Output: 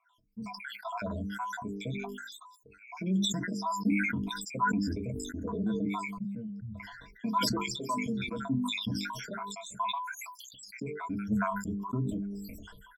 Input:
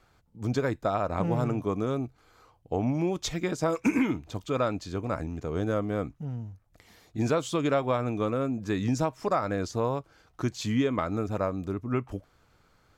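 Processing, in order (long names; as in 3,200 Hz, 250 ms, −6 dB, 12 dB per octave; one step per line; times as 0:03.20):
time-frequency cells dropped at random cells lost 79%
mains-hum notches 50/100/150/200/250/300/350/400/450 Hz
noise reduction from a noise print of the clip's start 7 dB
EQ curve with evenly spaced ripples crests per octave 1.7, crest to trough 13 dB
brickwall limiter −28 dBFS, peak gain reduction 15 dB
hollow resonant body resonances 220/1,000 Hz, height 17 dB, ringing for 95 ms
flanger 0.39 Hz, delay 1.6 ms, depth 8.9 ms, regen +19%
double-tracking delay 15 ms −13 dB
0:06.35–0:08.49: three-band delay without the direct sound mids, lows, highs 260/420 ms, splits 160/4,400 Hz
level that may fall only so fast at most 32 dB per second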